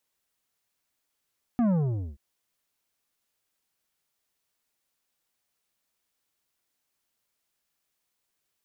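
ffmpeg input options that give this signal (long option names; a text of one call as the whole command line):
ffmpeg -f lavfi -i "aevalsrc='0.0841*clip((0.58-t)/0.47,0,1)*tanh(2.99*sin(2*PI*250*0.58/log(65/250)*(exp(log(65/250)*t/0.58)-1)))/tanh(2.99)':duration=0.58:sample_rate=44100" out.wav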